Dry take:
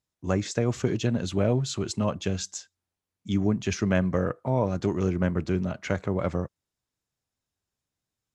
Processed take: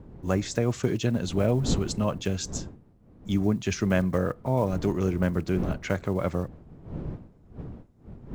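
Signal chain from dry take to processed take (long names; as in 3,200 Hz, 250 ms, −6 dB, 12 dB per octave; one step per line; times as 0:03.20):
one scale factor per block 7 bits
wind on the microphone 210 Hz −38 dBFS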